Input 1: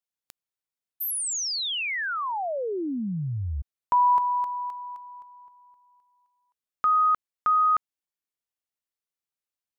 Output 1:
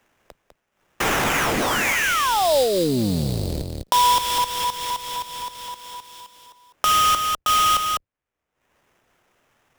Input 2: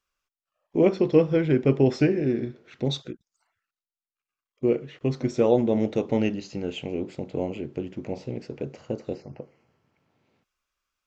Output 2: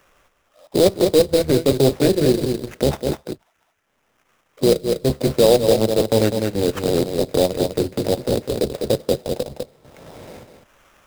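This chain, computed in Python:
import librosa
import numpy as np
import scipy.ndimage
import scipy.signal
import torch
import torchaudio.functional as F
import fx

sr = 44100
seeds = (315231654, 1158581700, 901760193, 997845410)

p1 = fx.octave_divider(x, sr, octaves=1, level_db=-2.0)
p2 = fx.high_shelf(p1, sr, hz=5800.0, db=4.5)
p3 = fx.rider(p2, sr, range_db=3, speed_s=2.0)
p4 = p2 + (p3 * librosa.db_to_amplitude(0.5))
p5 = fx.peak_eq(p4, sr, hz=560.0, db=11.0, octaves=1.0)
p6 = fx.transient(p5, sr, attack_db=-7, sustain_db=-11)
p7 = fx.sample_hold(p6, sr, seeds[0], rate_hz=4400.0, jitter_pct=20)
p8 = p7 + fx.echo_single(p7, sr, ms=201, db=-7.5, dry=0)
p9 = fx.band_squash(p8, sr, depth_pct=70)
y = p9 * librosa.db_to_amplitude(-3.0)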